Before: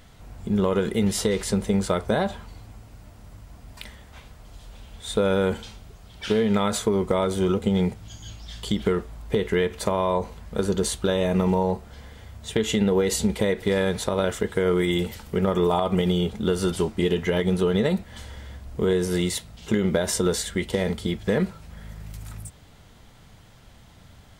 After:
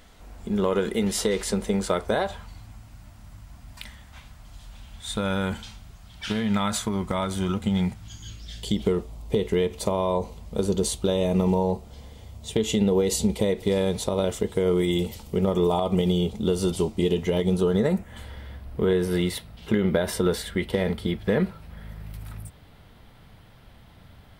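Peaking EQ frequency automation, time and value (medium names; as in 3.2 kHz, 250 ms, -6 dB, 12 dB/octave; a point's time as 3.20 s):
peaking EQ -12.5 dB 0.75 oct
2.02 s 120 Hz
2.54 s 440 Hz
8.01 s 440 Hz
8.82 s 1.6 kHz
17.50 s 1.6 kHz
18.31 s 6.9 kHz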